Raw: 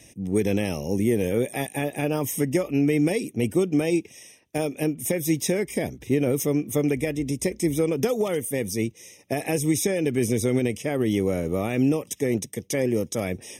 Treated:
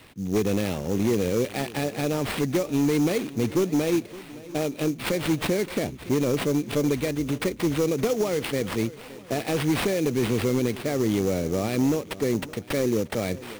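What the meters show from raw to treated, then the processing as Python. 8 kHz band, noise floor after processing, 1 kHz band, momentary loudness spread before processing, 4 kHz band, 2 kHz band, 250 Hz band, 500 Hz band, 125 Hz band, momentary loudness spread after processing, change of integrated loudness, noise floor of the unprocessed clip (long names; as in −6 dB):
−4.0 dB, −43 dBFS, +2.0 dB, 6 LU, +3.5 dB, +0.5 dB, −0.5 dB, −0.5 dB, −1.0 dB, 6 LU, −0.5 dB, −53 dBFS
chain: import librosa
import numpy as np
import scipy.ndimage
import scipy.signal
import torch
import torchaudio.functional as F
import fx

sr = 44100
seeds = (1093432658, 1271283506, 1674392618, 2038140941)

y = fx.sample_hold(x, sr, seeds[0], rate_hz=6400.0, jitter_pct=20)
y = np.clip(10.0 ** (17.0 / 20.0) * y, -1.0, 1.0) / 10.0 ** (17.0 / 20.0)
y = fx.echo_swing(y, sr, ms=944, ratio=1.5, feedback_pct=31, wet_db=-18.5)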